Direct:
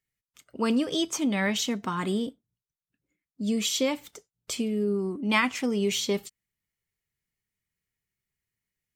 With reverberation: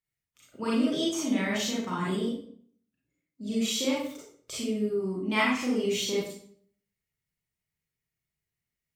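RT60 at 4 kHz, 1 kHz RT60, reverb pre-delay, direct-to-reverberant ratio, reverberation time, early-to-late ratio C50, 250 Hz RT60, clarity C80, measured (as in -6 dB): 0.45 s, 0.55 s, 31 ms, -6.5 dB, 0.55 s, 0.0 dB, 0.65 s, 6.0 dB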